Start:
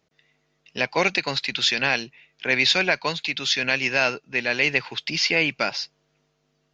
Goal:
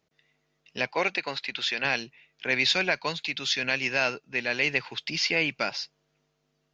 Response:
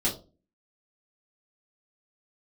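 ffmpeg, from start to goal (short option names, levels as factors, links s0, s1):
-filter_complex "[0:a]asettb=1/sr,asplit=3[s0][s1][s2];[s0]atrim=end=0.914[s3];[s1]atrim=start=0.91:end=1.85,asetpts=PTS-STARTPTS,afade=t=in:d=0.004:c=qsin,afade=t=out:st=0.936:d=0.004:c=qsin,bass=f=250:g=-9,treble=f=4000:g=-8[s4];[s2]atrim=start=1.846[s5];[s3][s4]acrossfade=d=0.004:c1=hsin:c2=qsin[s6];[s6][s5]acrossfade=d=0.004:c1=qsin:c2=hsin,volume=0.596"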